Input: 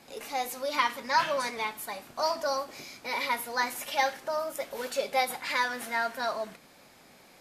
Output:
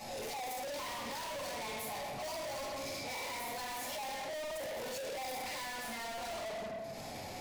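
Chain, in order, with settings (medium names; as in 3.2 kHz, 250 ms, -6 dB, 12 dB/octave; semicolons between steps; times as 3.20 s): expander -44 dBFS; upward compressor, threshold -37 dBFS; fifteen-band graphic EQ 100 Hz +10 dB, 630 Hz +6 dB, 6.3 kHz +5 dB; simulated room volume 350 m³, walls mixed, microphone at 6.6 m; hard clipper -26.5 dBFS, distortion -1 dB; band-stop 1.6 kHz, Q 11; peak limiter -32 dBFS, peak gain reduction 10 dB; saturation -37.5 dBFS, distortion -18 dB; peaking EQ 1.3 kHz -4.5 dB 0.5 oct; trim -1 dB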